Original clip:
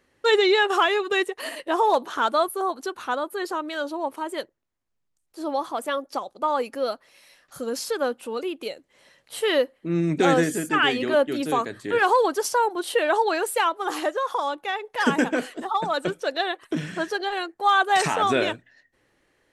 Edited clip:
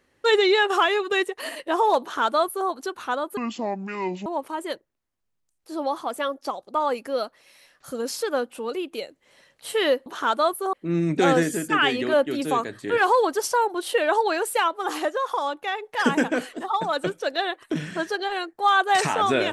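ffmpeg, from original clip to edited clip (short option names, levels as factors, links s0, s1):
-filter_complex "[0:a]asplit=5[s0][s1][s2][s3][s4];[s0]atrim=end=3.374[s5];[s1]atrim=start=3.37:end=3.94,asetpts=PTS-STARTPTS,asetrate=28224,aresample=44100[s6];[s2]atrim=start=3.936:end=9.742[s7];[s3]atrim=start=2.008:end=2.682[s8];[s4]atrim=start=9.738[s9];[s5][s6]acrossfade=d=0.004:c1=hsin:c2=hsin[s10];[s10][s7]acrossfade=d=0.004:c1=hsin:c2=hsin[s11];[s11][s8]acrossfade=d=0.004:c1=hsin:c2=hsin[s12];[s12][s9]acrossfade=d=0.004:c1=hsin:c2=hsin"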